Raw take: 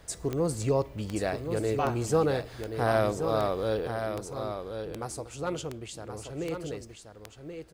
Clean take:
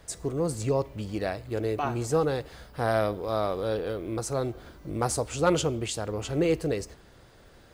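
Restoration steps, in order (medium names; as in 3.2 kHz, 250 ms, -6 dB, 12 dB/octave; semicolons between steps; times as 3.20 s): de-click; inverse comb 1078 ms -7.5 dB; trim 0 dB, from 3.87 s +9.5 dB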